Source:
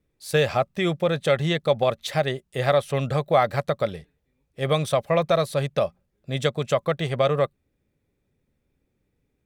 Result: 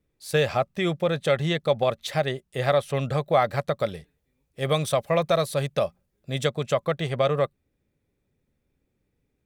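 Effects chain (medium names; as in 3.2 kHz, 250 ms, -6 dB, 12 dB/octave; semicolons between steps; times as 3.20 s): 3.79–6.45 s: treble shelf 5.7 kHz +6 dB; trim -1.5 dB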